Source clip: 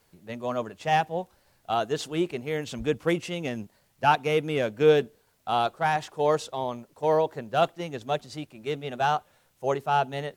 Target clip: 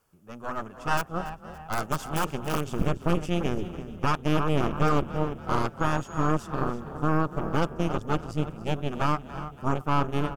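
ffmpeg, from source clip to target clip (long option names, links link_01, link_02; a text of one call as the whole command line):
ffmpeg -i in.wav -filter_complex "[0:a]asubboost=boost=7:cutoff=220,asplit=2[link_01][link_02];[link_02]adelay=333,lowpass=frequency=3000:poles=1,volume=-11dB,asplit=2[link_03][link_04];[link_04]adelay=333,lowpass=frequency=3000:poles=1,volume=0.51,asplit=2[link_05][link_06];[link_06]adelay=333,lowpass=frequency=3000:poles=1,volume=0.51,asplit=2[link_07][link_08];[link_08]adelay=333,lowpass=frequency=3000:poles=1,volume=0.51,asplit=2[link_09][link_10];[link_10]adelay=333,lowpass=frequency=3000:poles=1,volume=0.51[link_11];[link_03][link_05][link_07][link_09][link_11]amix=inputs=5:normalize=0[link_12];[link_01][link_12]amix=inputs=2:normalize=0,asettb=1/sr,asplit=3[link_13][link_14][link_15];[link_13]atrim=end=0.974[link_16];[link_14]atrim=start=0.97:end=2.7,asetpts=PTS-STARTPTS,afade=type=in:duration=0.004:curve=qsin,afade=type=out:start_time=1.726:duration=0.004:curve=qsin,aeval=exprs='(mod(8.41*val(0)+1,2)-1)/8.41':channel_layout=same[link_17];[link_15]atrim=start=2.696[link_18];[link_16][link_17]acrossfade=duration=0.004:curve1=hsin:curve2=qsin[link_19];[link_19][link_18]acrossfade=duration=0.004:curve1=qsin:curve2=hsin,aeval=exprs='0.447*(cos(1*acos(clip(val(0)/0.447,-1,1)))-cos(1*PI/2))+0.2*(cos(6*acos(clip(val(0)/0.447,-1,1)))-cos(6*PI/2))':channel_layout=same,equalizer=frequency=1250:width_type=o:width=0.33:gain=10,equalizer=frequency=2000:width_type=o:width=0.33:gain=-8,equalizer=frequency=4000:width_type=o:width=0.33:gain=-12,alimiter=limit=-7dB:level=0:latency=1:release=197,asplit=2[link_20][link_21];[link_21]asplit=4[link_22][link_23][link_24][link_25];[link_22]adelay=283,afreqshift=34,volume=-16dB[link_26];[link_23]adelay=566,afreqshift=68,volume=-23.1dB[link_27];[link_24]adelay=849,afreqshift=102,volume=-30.3dB[link_28];[link_25]adelay=1132,afreqshift=136,volume=-37.4dB[link_29];[link_26][link_27][link_28][link_29]amix=inputs=4:normalize=0[link_30];[link_20][link_30]amix=inputs=2:normalize=0,asettb=1/sr,asplit=3[link_31][link_32][link_33];[link_31]atrim=end=5.804[link_34];[link_32]atrim=start=5.8:end=6.32,asetpts=PTS-STARTPTS,afade=type=in:duration=0.004:curve=qsin,afade=type=out:start_time=0.516:duration=0.004:curve=qsin,aeval=exprs='val(0)+0.00501*sin(2*PI*6700*n/s)':channel_layout=same[link_35];[link_33]atrim=start=6.316[link_36];[link_34][link_35]acrossfade=duration=0.004:curve1=hsin:curve2=qsin[link_37];[link_37][link_36]acrossfade=duration=0.004:curve1=qsin:curve2=hsin,volume=-5.5dB" out.wav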